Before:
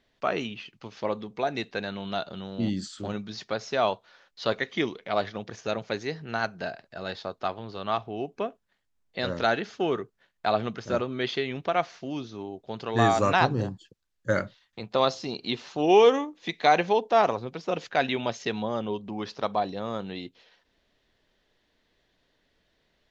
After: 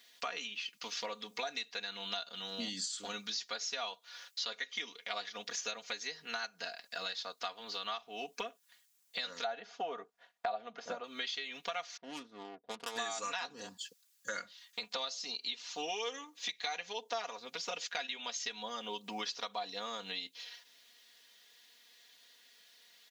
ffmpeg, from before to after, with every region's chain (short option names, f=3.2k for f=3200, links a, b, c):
-filter_complex "[0:a]asettb=1/sr,asplit=3[a][b][c];[a]atrim=end=9.444[d];[b]atrim=start=9.44:end=11.04,asetpts=PTS-STARTPTS,afade=t=in:d=0.004:c=qsin,afade=t=out:st=1.596:d=0.004:c=qsin,lowpass=f=1.1k:p=1,equalizer=f=700:t=o:w=0.76:g=11.5[e];[c]atrim=start=11.036[f];[d][e]acrossfade=d=0.004:c1=hsin:c2=qsin[g];[g][f]acrossfade=d=0.004:c1=qsin:c2=hsin,asettb=1/sr,asplit=3[h][i][j];[h]atrim=end=11.974[k];[i]atrim=start=11.97:end=12.98,asetpts=PTS-STARTPTS,afade=t=in:d=0.004:c=qsin,afade=t=out:st=1.006:d=0.004:c=qsin,aeval=exprs='(tanh(10*val(0)+0.8)-tanh(0.8))/10':c=same,adynamicsmooth=sensitivity=6:basefreq=590[l];[j]atrim=start=12.976[m];[k][l]acrossfade=d=0.004:c1=hsin:c2=qsin[n];[n][m]acrossfade=d=0.004:c1=qsin:c2=hsin,aderivative,acompressor=threshold=-55dB:ratio=8,aecho=1:1:4.2:0.8,volume=16.5dB"